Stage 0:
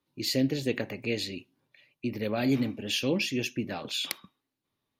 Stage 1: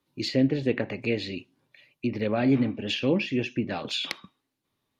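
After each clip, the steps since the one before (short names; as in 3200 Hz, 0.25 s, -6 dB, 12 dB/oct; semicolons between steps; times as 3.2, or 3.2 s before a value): treble ducked by the level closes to 2300 Hz, closed at -26 dBFS; gain +4 dB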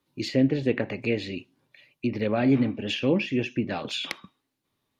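dynamic EQ 4300 Hz, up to -5 dB, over -45 dBFS, Q 2.2; gain +1 dB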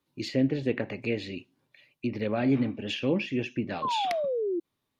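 painted sound fall, 3.82–4.6, 330–1100 Hz -25 dBFS; gain -3.5 dB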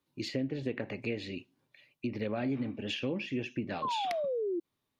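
compressor, threshold -27 dBFS, peak gain reduction 8 dB; gain -2.5 dB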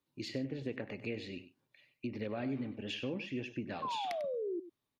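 echo 97 ms -13.5 dB; gain -4.5 dB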